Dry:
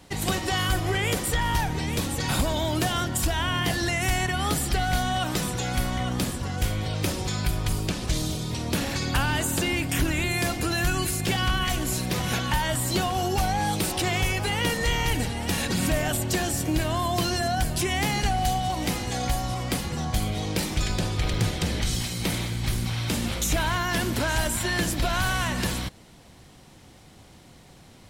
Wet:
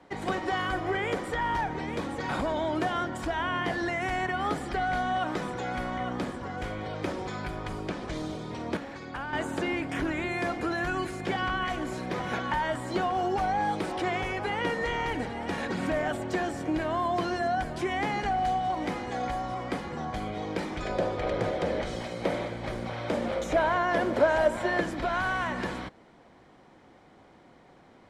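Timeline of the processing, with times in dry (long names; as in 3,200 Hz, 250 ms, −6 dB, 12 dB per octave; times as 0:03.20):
0:08.77–0:09.33: clip gain −7.5 dB
0:20.85–0:24.81: parametric band 570 Hz +12 dB 0.62 octaves
whole clip: low-pass filter 7,300 Hz 12 dB per octave; three-way crossover with the lows and the highs turned down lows −14 dB, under 230 Hz, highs −16 dB, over 2,200 Hz; notch filter 2,700 Hz, Q 14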